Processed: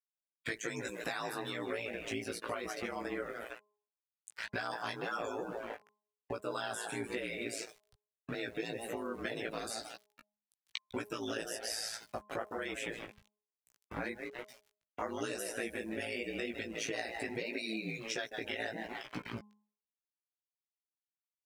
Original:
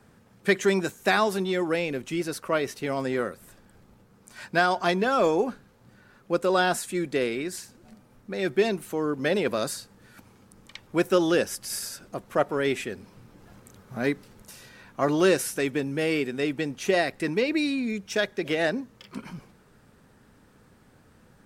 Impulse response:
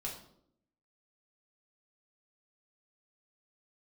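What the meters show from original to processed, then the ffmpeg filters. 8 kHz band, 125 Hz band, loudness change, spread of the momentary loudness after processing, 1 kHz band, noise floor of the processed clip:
-8.5 dB, -14.5 dB, -13.5 dB, 8 LU, -13.0 dB, under -85 dBFS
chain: -filter_complex "[0:a]asplit=5[a][b][c][d][e];[b]adelay=153,afreqshift=64,volume=-11dB[f];[c]adelay=306,afreqshift=128,volume=-19dB[g];[d]adelay=459,afreqshift=192,volume=-26.9dB[h];[e]adelay=612,afreqshift=256,volume=-34.9dB[i];[a][f][g][h][i]amix=inputs=5:normalize=0,aeval=exprs='val(0)*gte(abs(val(0)),0.0119)':c=same,equalizer=f=2.4k:t=o:w=2.3:g=5,acrossover=split=81|6700[j][k][l];[j]acompressor=threshold=-60dB:ratio=4[m];[k]acompressor=threshold=-34dB:ratio=4[n];[l]acompressor=threshold=-42dB:ratio=4[o];[m][n][o]amix=inputs=3:normalize=0,aeval=exprs='val(0)*sin(2*PI*56*n/s)':c=same,afftdn=nr=17:nf=-49,lowshelf=f=360:g=-4,bandreject=f=209:t=h:w=4,bandreject=f=418:t=h:w=4,bandreject=f=627:t=h:w=4,bandreject=f=836:t=h:w=4,bandreject=f=1.045k:t=h:w=4,acompressor=threshold=-43dB:ratio=2,flanger=delay=16:depth=2.3:speed=1.1,volume=8dB"

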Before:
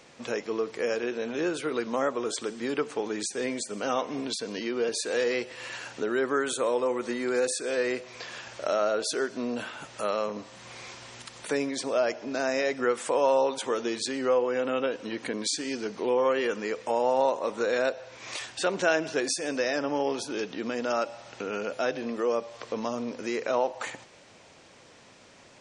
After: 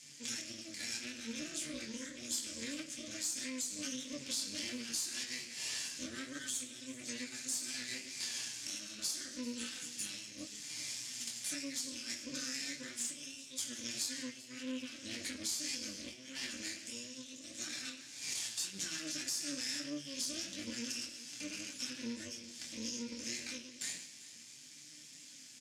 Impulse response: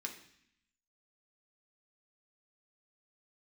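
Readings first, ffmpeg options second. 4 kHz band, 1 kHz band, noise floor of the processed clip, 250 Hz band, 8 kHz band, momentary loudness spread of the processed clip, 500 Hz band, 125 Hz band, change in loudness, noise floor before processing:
-2.5 dB, -28.0 dB, -54 dBFS, -12.0 dB, 0.0 dB, 8 LU, -28.0 dB, -11.0 dB, -11.0 dB, -54 dBFS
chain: -filter_complex "[1:a]atrim=start_sample=2205,asetrate=57330,aresample=44100[a];[0:a][a]afir=irnorm=-1:irlink=0,acompressor=threshold=-33dB:ratio=4,asuperstop=centerf=720:order=20:qfactor=0.58,flanger=delay=19.5:depth=7:speed=1.7,aeval=exprs='max(val(0),0)':c=same,flanger=delay=6.7:depth=7.5:regen=50:speed=0.28:shape=sinusoidal,highshelf=f=5.3k:g=11,alimiter=level_in=13dB:limit=-24dB:level=0:latency=1:release=231,volume=-13dB,highpass=120,lowpass=6.8k,bass=f=250:g=4,treble=f=4k:g=14,aecho=1:1:391:0.126,volume=6.5dB"

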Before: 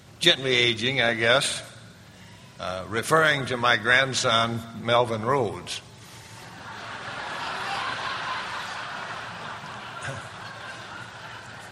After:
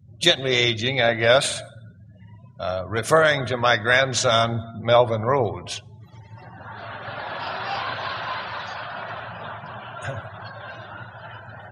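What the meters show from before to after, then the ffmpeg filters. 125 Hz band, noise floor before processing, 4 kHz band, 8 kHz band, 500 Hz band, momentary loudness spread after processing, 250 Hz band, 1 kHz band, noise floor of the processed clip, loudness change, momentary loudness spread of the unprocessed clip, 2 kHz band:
+4.5 dB, -47 dBFS, +0.5 dB, +2.5 dB, +5.0 dB, 20 LU, +1.0 dB, +2.0 dB, -47 dBFS, +2.5 dB, 19 LU, +0.5 dB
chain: -af "afftdn=nr=35:nf=-42,equalizer=f=100:t=o:w=0.67:g=8,equalizer=f=630:t=o:w=0.67:g=7,equalizer=f=6.3k:t=o:w=0.67:g=5"

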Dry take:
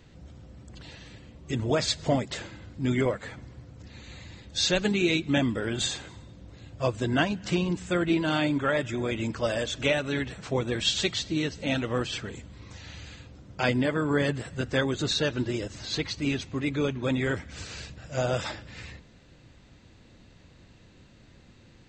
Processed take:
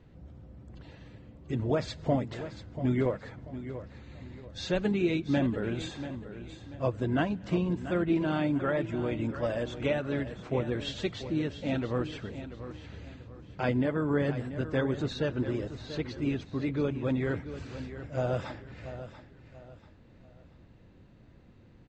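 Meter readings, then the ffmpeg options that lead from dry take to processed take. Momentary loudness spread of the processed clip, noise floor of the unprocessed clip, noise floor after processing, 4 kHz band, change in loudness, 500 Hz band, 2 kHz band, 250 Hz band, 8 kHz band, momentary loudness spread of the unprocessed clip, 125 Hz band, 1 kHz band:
18 LU, -55 dBFS, -56 dBFS, -12.5 dB, -3.5 dB, -2.0 dB, -7.5 dB, -1.5 dB, under -15 dB, 20 LU, -1.0 dB, -4.0 dB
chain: -filter_complex "[0:a]lowpass=f=1k:p=1,asplit=2[a][b];[b]aecho=0:1:687|1374|2061:0.251|0.0854|0.029[c];[a][c]amix=inputs=2:normalize=0,volume=-1.5dB"

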